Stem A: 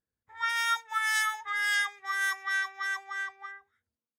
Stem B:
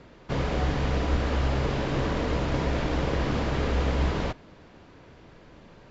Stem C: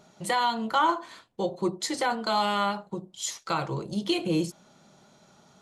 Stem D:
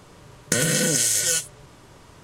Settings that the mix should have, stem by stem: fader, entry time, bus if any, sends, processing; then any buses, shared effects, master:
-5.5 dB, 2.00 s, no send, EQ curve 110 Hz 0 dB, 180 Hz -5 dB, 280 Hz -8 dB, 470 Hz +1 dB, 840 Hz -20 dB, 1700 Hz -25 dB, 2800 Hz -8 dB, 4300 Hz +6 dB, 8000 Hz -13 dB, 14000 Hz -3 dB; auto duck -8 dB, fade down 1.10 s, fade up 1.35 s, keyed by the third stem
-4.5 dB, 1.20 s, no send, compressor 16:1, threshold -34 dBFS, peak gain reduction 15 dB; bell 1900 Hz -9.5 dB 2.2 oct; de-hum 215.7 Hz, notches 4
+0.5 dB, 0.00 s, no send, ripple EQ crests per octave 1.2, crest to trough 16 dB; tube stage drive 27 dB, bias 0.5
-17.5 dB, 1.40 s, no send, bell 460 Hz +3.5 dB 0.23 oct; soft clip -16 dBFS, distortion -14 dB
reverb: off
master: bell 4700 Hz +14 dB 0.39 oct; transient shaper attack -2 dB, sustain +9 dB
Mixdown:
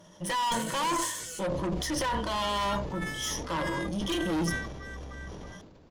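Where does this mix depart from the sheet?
stem A: missing EQ curve 110 Hz 0 dB, 180 Hz -5 dB, 280 Hz -8 dB, 470 Hz +1 dB, 840 Hz -20 dB, 1700 Hz -25 dB, 2800 Hz -8 dB, 4300 Hz +6 dB, 8000 Hz -13 dB, 14000 Hz -3 dB; stem D: entry 1.40 s -> 0.00 s; master: missing bell 4700 Hz +14 dB 0.39 oct

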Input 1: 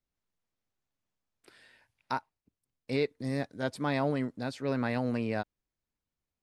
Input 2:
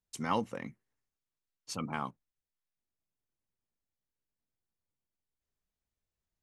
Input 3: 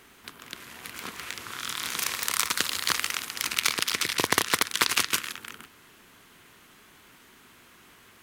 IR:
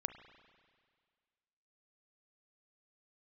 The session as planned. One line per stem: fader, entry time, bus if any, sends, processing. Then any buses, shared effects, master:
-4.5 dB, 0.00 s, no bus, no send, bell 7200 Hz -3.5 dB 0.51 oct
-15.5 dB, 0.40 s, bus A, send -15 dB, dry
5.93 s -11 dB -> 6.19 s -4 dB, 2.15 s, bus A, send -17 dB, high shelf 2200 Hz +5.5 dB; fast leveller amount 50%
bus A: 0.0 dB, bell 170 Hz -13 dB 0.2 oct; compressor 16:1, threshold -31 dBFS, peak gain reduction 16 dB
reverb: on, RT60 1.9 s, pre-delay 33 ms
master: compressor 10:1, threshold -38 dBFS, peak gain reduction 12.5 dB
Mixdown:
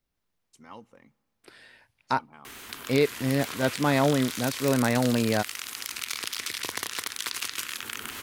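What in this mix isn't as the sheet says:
stem 1 -4.5 dB -> +7.0 dB; stem 3: entry 2.15 s -> 2.45 s; master: missing compressor 10:1, threshold -38 dBFS, peak gain reduction 12.5 dB

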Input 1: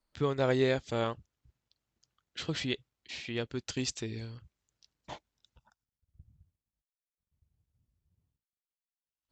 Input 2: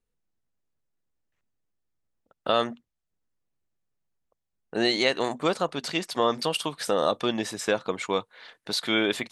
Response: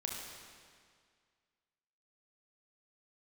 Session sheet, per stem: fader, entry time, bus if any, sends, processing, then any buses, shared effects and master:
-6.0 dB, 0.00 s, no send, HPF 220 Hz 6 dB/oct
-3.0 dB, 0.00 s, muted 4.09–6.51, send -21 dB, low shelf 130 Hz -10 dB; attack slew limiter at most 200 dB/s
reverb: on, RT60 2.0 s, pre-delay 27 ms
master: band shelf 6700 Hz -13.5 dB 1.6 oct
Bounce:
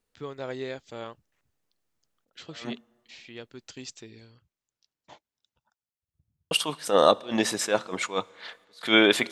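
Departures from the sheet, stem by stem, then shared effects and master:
stem 2 -3.0 dB -> +6.0 dB; master: missing band shelf 6700 Hz -13.5 dB 1.6 oct

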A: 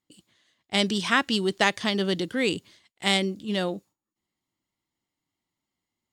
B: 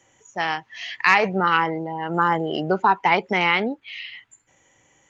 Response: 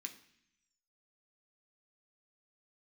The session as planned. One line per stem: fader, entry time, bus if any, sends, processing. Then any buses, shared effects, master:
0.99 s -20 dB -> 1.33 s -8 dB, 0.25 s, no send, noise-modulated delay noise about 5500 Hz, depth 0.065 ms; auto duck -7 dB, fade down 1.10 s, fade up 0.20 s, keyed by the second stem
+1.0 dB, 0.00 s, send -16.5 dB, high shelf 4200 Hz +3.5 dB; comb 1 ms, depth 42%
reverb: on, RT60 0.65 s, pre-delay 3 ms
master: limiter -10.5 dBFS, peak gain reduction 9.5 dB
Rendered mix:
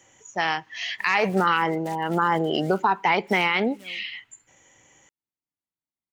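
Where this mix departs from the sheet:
stem A -20.0 dB -> -27.0 dB; stem B: missing comb 1 ms, depth 42%

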